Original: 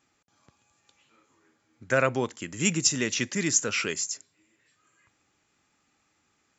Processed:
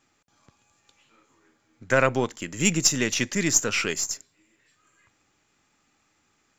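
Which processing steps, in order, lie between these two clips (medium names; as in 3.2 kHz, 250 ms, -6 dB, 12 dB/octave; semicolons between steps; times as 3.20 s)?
partial rectifier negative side -3 dB; trim +4 dB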